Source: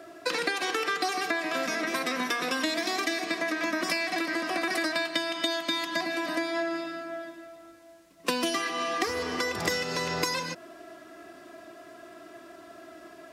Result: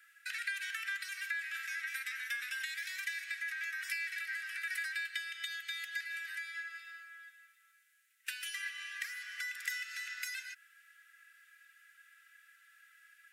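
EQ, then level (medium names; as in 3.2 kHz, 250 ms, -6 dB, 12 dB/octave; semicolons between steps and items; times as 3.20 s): steep high-pass 1.5 kHz 72 dB/octave; peaking EQ 4.8 kHz -13 dB 1.4 oct; -2.5 dB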